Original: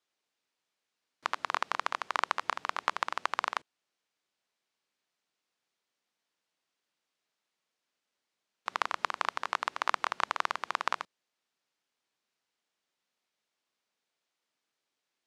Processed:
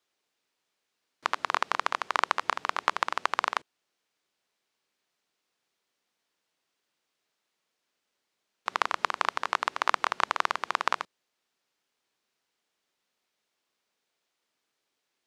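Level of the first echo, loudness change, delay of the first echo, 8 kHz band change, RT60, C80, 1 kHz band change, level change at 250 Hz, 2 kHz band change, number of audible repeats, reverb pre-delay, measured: no echo audible, +4.0 dB, no echo audible, +4.0 dB, no reverb audible, no reverb audible, +4.0 dB, +5.0 dB, +4.0 dB, no echo audible, no reverb audible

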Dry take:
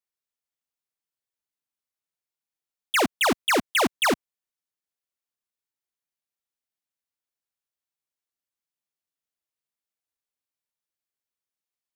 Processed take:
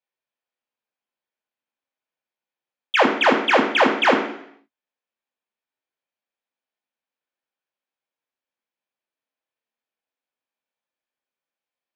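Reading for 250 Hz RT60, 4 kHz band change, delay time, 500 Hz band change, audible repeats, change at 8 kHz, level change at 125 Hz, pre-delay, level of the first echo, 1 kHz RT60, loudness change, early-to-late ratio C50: 0.70 s, +2.0 dB, no echo audible, +7.5 dB, no echo audible, −10.5 dB, −0.5 dB, 3 ms, no echo audible, 0.65 s, +5.5 dB, 7.0 dB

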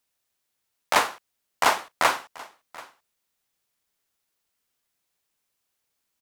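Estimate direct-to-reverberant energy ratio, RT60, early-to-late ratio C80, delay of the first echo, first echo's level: no reverb audible, no reverb audible, no reverb audible, 734 ms, −21.0 dB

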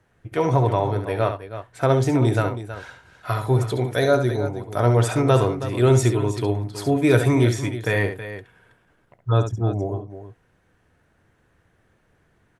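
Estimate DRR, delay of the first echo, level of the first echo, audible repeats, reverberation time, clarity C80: no reverb audible, 68 ms, −8.5 dB, 2, no reverb audible, no reverb audible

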